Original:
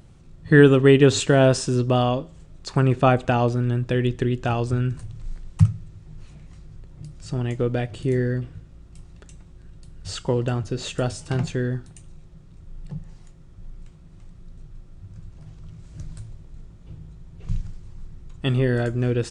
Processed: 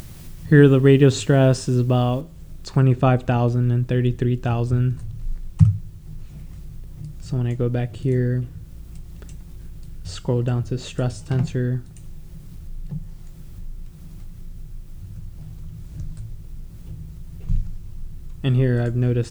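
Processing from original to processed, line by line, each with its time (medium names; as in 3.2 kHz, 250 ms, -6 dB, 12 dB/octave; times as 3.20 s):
2.21 s: noise floor step -52 dB -60 dB
whole clip: bass shelf 270 Hz +9 dB; hum notches 50/100 Hz; upward compressor, threshold -26 dBFS; trim -3.5 dB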